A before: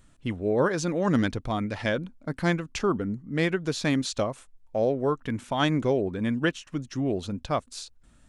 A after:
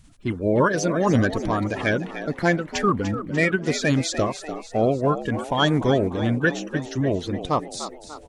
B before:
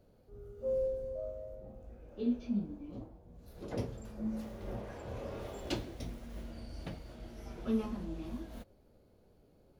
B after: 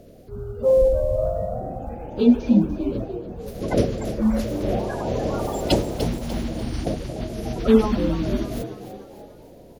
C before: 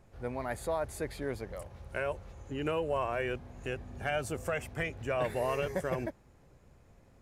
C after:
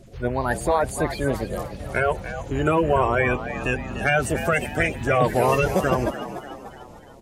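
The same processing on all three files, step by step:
bin magnitudes rounded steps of 30 dB; frequency-shifting echo 0.295 s, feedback 49%, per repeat +77 Hz, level -11.5 dB; match loudness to -23 LUFS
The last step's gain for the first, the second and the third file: +5.0, +17.5, +13.0 dB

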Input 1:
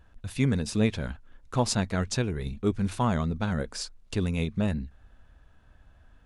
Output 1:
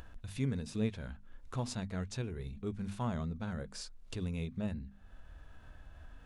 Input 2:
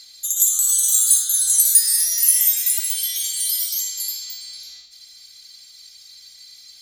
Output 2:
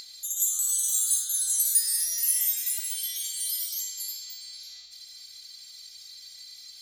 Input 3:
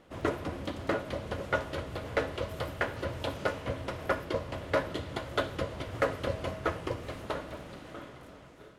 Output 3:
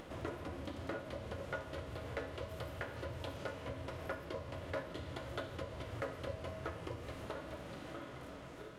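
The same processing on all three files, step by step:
notches 50/100/150/200/250 Hz; harmonic-percussive split percussive -7 dB; upward compressor, threshold -29 dBFS; gain -8 dB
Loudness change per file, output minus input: -10.0, -9.0, -10.0 LU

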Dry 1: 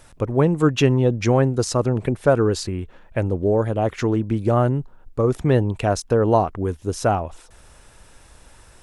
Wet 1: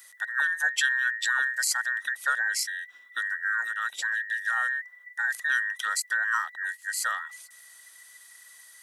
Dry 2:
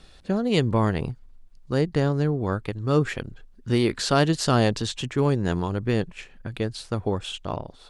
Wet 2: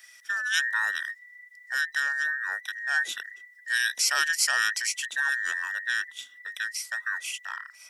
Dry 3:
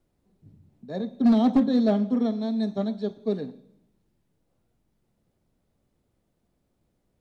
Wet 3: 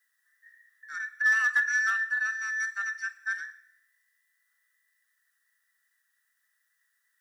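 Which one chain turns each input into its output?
band inversion scrambler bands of 2000 Hz; HPF 210 Hz 6 dB/oct; differentiator; match loudness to -27 LUFS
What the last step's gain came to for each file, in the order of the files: +3.0, +6.5, +7.0 dB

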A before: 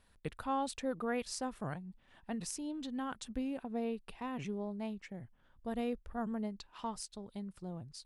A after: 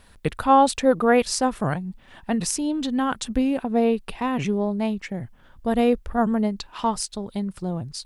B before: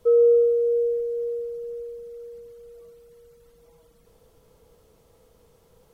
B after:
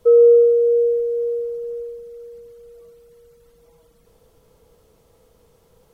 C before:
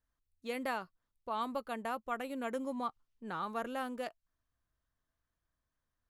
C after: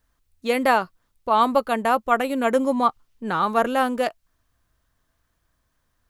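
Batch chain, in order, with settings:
dynamic EQ 670 Hz, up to +5 dB, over -38 dBFS, Q 0.7; normalise peaks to -6 dBFS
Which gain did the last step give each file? +15.5, +2.0, +15.5 dB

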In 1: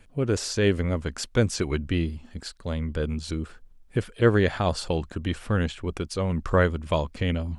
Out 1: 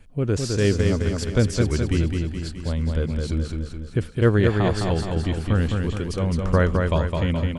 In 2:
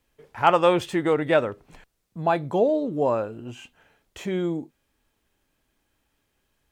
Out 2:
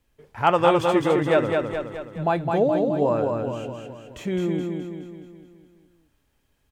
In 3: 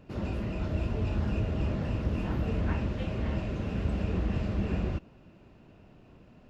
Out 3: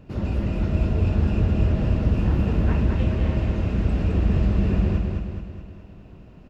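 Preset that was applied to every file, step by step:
low shelf 210 Hz +7 dB; on a send: feedback echo 0.211 s, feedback 53%, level -4 dB; on the sum: match loudness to -23 LUFS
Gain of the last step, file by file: -1.5, -1.5, +2.5 dB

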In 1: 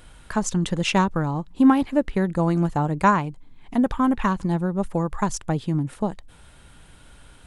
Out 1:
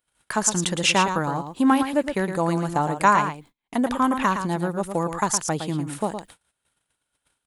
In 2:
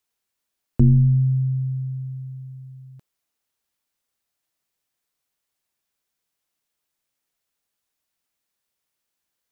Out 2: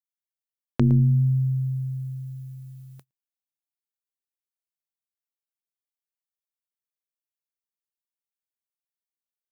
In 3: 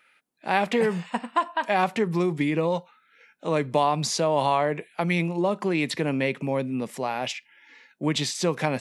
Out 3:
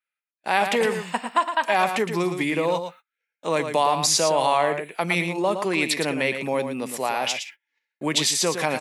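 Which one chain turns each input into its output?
in parallel at -2 dB: limiter -15 dBFS; on the sum: HPF 80 Hz 6 dB/oct; high shelf 8900 Hz +12 dB; on a send: echo 0.113 s -8 dB; on the sum: gate -40 dBFS, range -33 dB; low shelf 290 Hz -11 dB; match loudness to -23 LUFS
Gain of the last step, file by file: -0.5, +2.5, -0.5 dB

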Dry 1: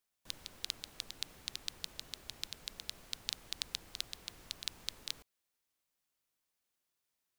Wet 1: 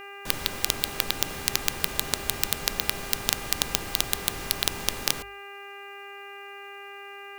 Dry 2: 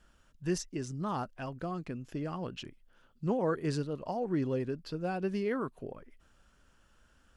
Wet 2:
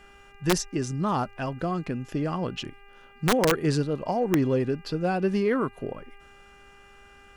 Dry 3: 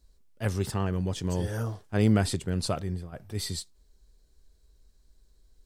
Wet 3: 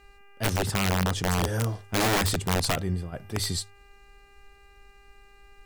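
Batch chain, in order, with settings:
notches 50/100 Hz; in parallel at -7 dB: soft clip -27 dBFS; on the sum: buzz 400 Hz, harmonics 7, -60 dBFS -1 dB/oct; wrapped overs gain 20 dB; match loudness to -27 LUFS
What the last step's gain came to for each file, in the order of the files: +18.0, +5.5, +2.0 dB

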